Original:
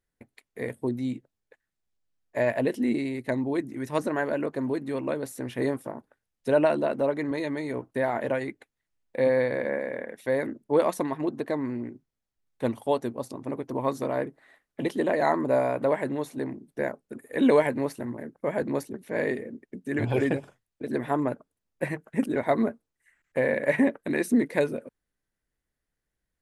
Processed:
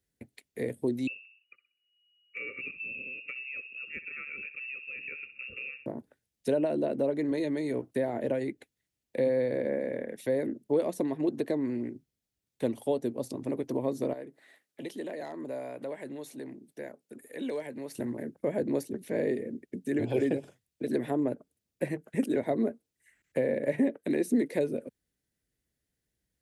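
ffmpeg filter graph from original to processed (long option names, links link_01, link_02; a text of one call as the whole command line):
ffmpeg -i in.wav -filter_complex "[0:a]asettb=1/sr,asplit=3[link_01][link_02][link_03];[link_01]atrim=end=1.074[link_04];[link_02]atrim=start=1.07:end=5.86,asetpts=PTS-STARTPTS,afade=type=in:duration=0.004:curve=qsin,afade=type=out:start_time=4.786:duration=0.004:curve=qsin,asuperstop=centerf=2000:order=20:qfactor=3.2,asplit=2[link_05][link_06];[link_06]adelay=63,lowpass=frequency=900:poles=1,volume=-11dB,asplit=2[link_07][link_08];[link_08]adelay=63,lowpass=frequency=900:poles=1,volume=0.43,asplit=2[link_09][link_10];[link_10]adelay=63,lowpass=frequency=900:poles=1,volume=0.43,asplit=2[link_11][link_12];[link_12]adelay=63,lowpass=frequency=900:poles=1,volume=0.43[link_13];[link_05][link_07][link_09][link_11][link_13]amix=inputs=5:normalize=0,atrim=end_sample=211239,lowpass=frequency=2500:width_type=q:width=0.5098,lowpass=frequency=2500:width_type=q:width=0.6013,lowpass=frequency=2500:width_type=q:width=0.9,lowpass=frequency=2500:width_type=q:width=2.563,afreqshift=-2900[link_14];[link_03]atrim=start=5.856[link_15];[link_04][link_14]acrossfade=duration=0.004:curve1=hsin:curve2=qsin[link_16];[link_16][link_15]acrossfade=duration=0.004:curve1=qsin:curve2=hsin,asettb=1/sr,asplit=3[link_17][link_18][link_19];[link_17]atrim=end=14.134[link_20];[link_18]atrim=start=14.13:end=17.95,asetpts=PTS-STARTPTS,afade=type=in:duration=0.004:curve=qsin,afade=type=out:start_time=3.816:duration=0.004:curve=qsin,highpass=frequency=420:poles=1,acompressor=threshold=-53dB:ratio=1.5:attack=3.2:release=140:knee=1:detection=peak,asoftclip=type=hard:threshold=-26dB[link_21];[link_19]atrim=start=17.946[link_22];[link_20][link_21]acrossfade=duration=0.004:curve1=hsin:curve2=qsin[link_23];[link_23][link_22]acrossfade=duration=0.004:curve1=qsin:curve2=hsin,acrossover=split=270|700[link_24][link_25][link_26];[link_24]acompressor=threshold=-44dB:ratio=4[link_27];[link_25]acompressor=threshold=-26dB:ratio=4[link_28];[link_26]acompressor=threshold=-42dB:ratio=4[link_29];[link_27][link_28][link_29]amix=inputs=3:normalize=0,highpass=59,equalizer=frequency=1100:width=0.88:gain=-11.5,volume=4.5dB" out.wav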